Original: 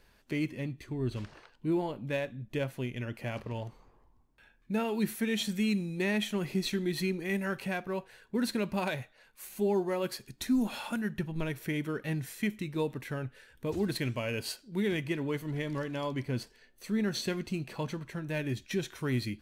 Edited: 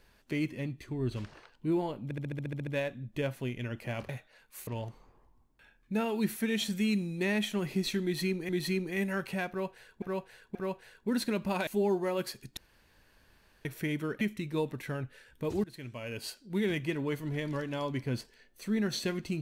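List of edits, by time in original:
0:02.04: stutter 0.07 s, 10 plays
0:06.82–0:07.28: repeat, 2 plays
0:07.82–0:08.35: repeat, 3 plays
0:08.94–0:09.52: move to 0:03.46
0:10.42–0:11.50: fill with room tone
0:12.06–0:12.43: remove
0:13.86–0:14.79: fade in, from −20.5 dB

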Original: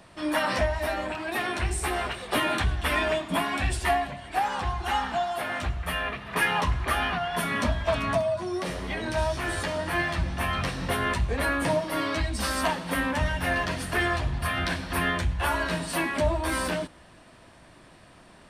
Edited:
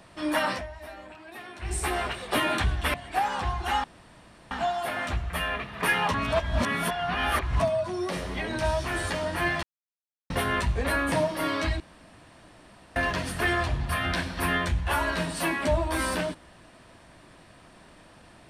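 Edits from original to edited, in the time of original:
0:00.48–0:01.75: duck −13.5 dB, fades 0.14 s
0:02.94–0:04.14: remove
0:05.04: splice in room tone 0.67 s
0:06.67–0:08.13: reverse
0:10.16–0:10.83: silence
0:12.33–0:13.49: fill with room tone

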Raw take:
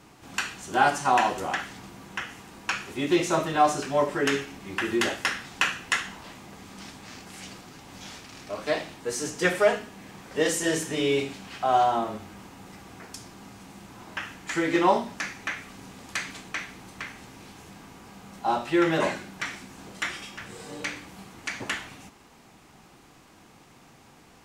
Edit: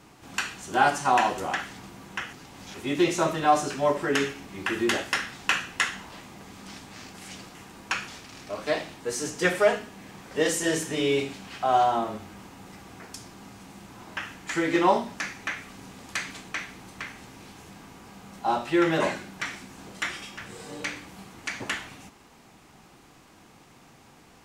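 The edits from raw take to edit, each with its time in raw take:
0:02.33–0:02.86: swap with 0:07.67–0:08.08

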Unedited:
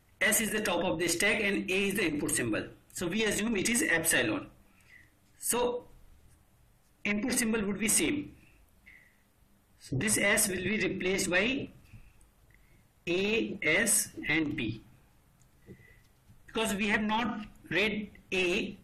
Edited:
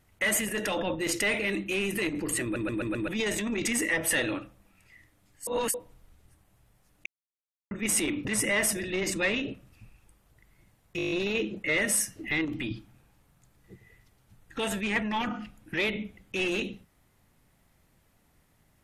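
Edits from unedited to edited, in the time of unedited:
0:02.43: stutter in place 0.13 s, 5 plays
0:05.47–0:05.74: reverse
0:07.06–0:07.71: silence
0:08.25–0:09.99: remove
0:10.64–0:11.02: remove
0:13.09: stutter 0.02 s, 8 plays

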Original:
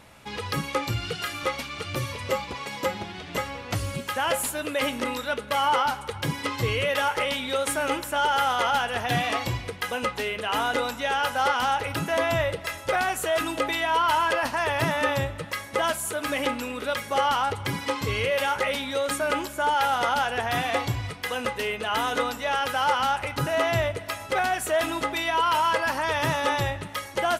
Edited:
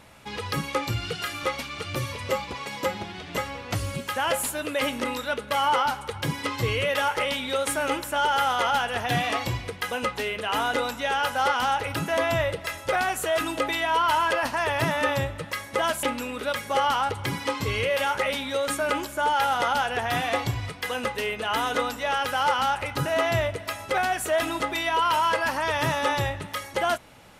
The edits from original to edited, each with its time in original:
0:16.03–0:16.44: remove

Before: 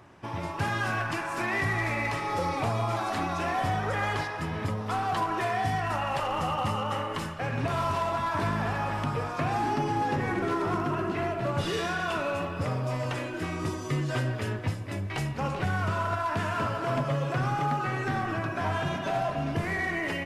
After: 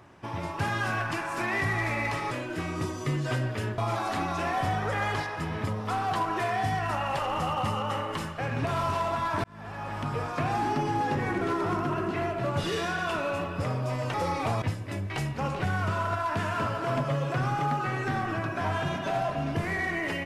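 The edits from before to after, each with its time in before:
0:02.31–0:02.79: swap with 0:13.15–0:14.62
0:08.45–0:09.24: fade in

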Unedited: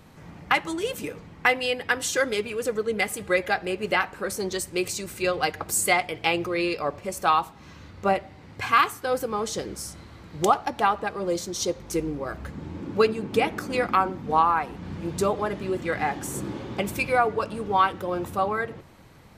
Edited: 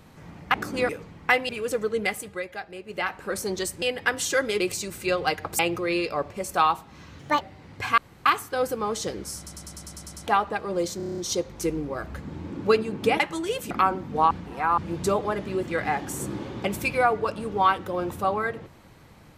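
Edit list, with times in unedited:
0:00.54–0:01.05: swap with 0:13.50–0:13.85
0:01.65–0:02.43: move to 0:04.76
0:02.93–0:04.24: duck −11 dB, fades 0.44 s
0:05.75–0:06.27: remove
0:07.87–0:08.20: play speed 152%
0:08.77: splice in room tone 0.28 s
0:09.88: stutter in place 0.10 s, 9 plays
0:11.48: stutter 0.03 s, 8 plays
0:14.45–0:14.92: reverse

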